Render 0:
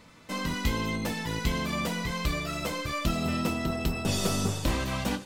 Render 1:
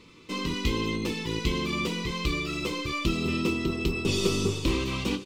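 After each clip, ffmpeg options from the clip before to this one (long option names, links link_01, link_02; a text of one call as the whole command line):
ffmpeg -i in.wav -af "firequalizer=gain_entry='entry(240,0);entry(370,11);entry(650,-13);entry(1100,1);entry(1600,-10);entry(2400,5);entry(11000,-8)':delay=0.05:min_phase=1" out.wav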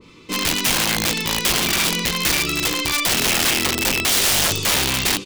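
ffmpeg -i in.wav -af "aeval=exprs='(mod(15*val(0)+1,2)-1)/15':channel_layout=same,adynamicequalizer=threshold=0.00631:dfrequency=1600:dqfactor=0.7:tfrequency=1600:tqfactor=0.7:attack=5:release=100:ratio=0.375:range=3:mode=boostabove:tftype=highshelf,volume=6.5dB" out.wav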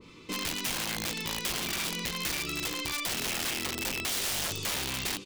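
ffmpeg -i in.wav -af "acompressor=threshold=-31dB:ratio=2,volume=-5dB" out.wav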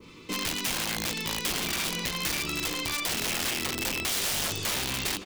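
ffmpeg -i in.wav -filter_complex "[0:a]acrossover=split=140|1200[link_01][link_02][link_03];[link_02]acrusher=bits=4:mode=log:mix=0:aa=0.000001[link_04];[link_01][link_04][link_03]amix=inputs=3:normalize=0,asplit=2[link_05][link_06];[link_06]adelay=1166,volume=-10dB,highshelf=frequency=4000:gain=-26.2[link_07];[link_05][link_07]amix=inputs=2:normalize=0,volume=2.5dB" out.wav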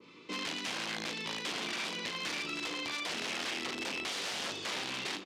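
ffmpeg -i in.wav -filter_complex "[0:a]highpass=230,lowpass=4900,asplit=2[link_01][link_02];[link_02]adelay=37,volume=-11dB[link_03];[link_01][link_03]amix=inputs=2:normalize=0,volume=-5dB" out.wav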